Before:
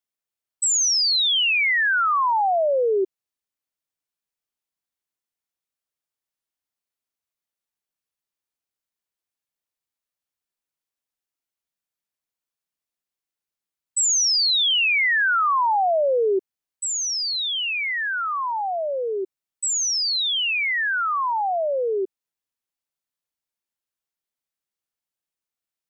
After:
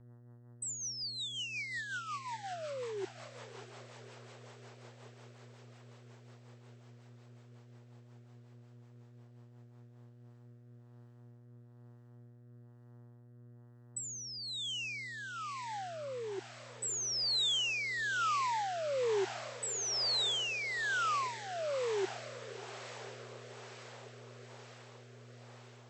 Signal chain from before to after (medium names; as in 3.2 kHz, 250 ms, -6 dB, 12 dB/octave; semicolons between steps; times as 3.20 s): compressor with a negative ratio -24 dBFS, ratio -0.5; on a send: echo that smears into a reverb 629 ms, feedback 72%, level -13.5 dB; on the sum: mains buzz 120 Hz, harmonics 16, -46 dBFS -9 dB/octave; rotary cabinet horn 5.5 Hz, later 1.1 Hz, at 9.63 s; trim -9 dB